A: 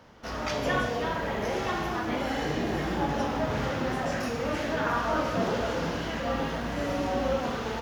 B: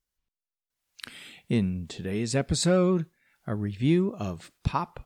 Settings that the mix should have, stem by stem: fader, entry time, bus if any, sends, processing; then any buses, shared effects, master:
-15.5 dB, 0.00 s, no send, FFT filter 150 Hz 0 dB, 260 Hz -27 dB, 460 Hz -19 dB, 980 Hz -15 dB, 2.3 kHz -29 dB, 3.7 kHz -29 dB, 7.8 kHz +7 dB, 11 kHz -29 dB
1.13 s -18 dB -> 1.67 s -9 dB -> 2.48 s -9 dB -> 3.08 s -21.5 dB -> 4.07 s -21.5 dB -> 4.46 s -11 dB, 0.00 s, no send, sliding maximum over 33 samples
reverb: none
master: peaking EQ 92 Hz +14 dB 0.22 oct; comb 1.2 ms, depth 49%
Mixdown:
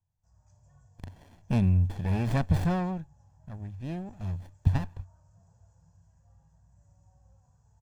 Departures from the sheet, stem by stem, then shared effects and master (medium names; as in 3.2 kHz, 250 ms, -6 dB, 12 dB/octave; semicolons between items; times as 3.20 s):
stem A -15.5 dB -> -27.0 dB; stem B -18.0 dB -> -9.0 dB